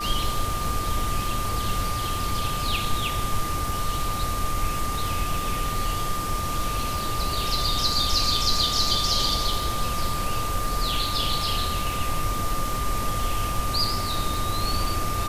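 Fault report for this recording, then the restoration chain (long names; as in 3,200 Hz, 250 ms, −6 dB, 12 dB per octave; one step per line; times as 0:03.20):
surface crackle 23 per second −30 dBFS
whistle 1,200 Hz −29 dBFS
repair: click removal
notch filter 1,200 Hz, Q 30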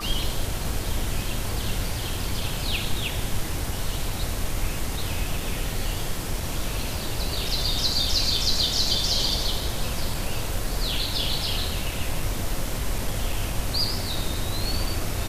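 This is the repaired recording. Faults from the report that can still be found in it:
none of them is left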